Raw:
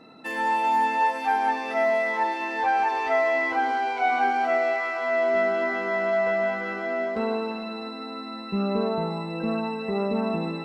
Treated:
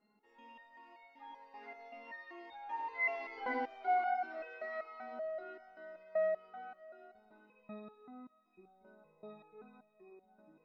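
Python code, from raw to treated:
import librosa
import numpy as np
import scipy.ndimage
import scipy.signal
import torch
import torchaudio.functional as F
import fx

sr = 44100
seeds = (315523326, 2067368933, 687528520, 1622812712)

p1 = fx.doppler_pass(x, sr, speed_mps=16, closest_m=11.0, pass_at_s=3.59)
p2 = scipy.ndimage.gaussian_filter1d(p1, 2.0, mode='constant')
p3 = p2 + fx.echo_alternate(p2, sr, ms=102, hz=960.0, feedback_pct=55, wet_db=-6.5, dry=0)
p4 = fx.resonator_held(p3, sr, hz=5.2, low_hz=210.0, high_hz=730.0)
y = p4 * librosa.db_to_amplitude(4.5)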